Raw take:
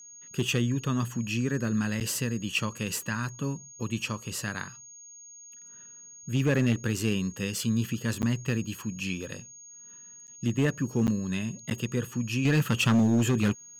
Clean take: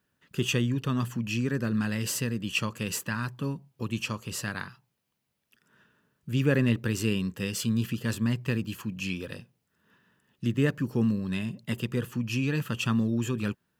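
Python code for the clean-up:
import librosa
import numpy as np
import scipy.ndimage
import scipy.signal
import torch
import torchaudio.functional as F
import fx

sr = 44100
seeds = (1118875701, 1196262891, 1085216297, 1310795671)

y = fx.fix_declip(x, sr, threshold_db=-18.0)
y = fx.notch(y, sr, hz=6600.0, q=30.0)
y = fx.fix_interpolate(y, sr, at_s=(2.0, 8.22, 10.27, 11.07, 11.7), length_ms=9.1)
y = fx.gain(y, sr, db=fx.steps((0.0, 0.0), (12.45, -6.0)))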